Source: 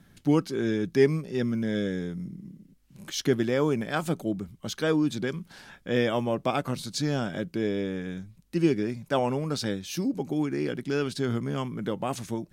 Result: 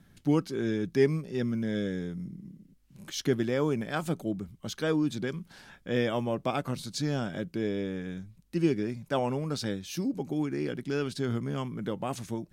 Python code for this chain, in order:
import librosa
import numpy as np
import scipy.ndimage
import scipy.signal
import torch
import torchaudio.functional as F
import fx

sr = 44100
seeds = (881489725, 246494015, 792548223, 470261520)

y = fx.low_shelf(x, sr, hz=160.0, db=3.0)
y = F.gain(torch.from_numpy(y), -3.5).numpy()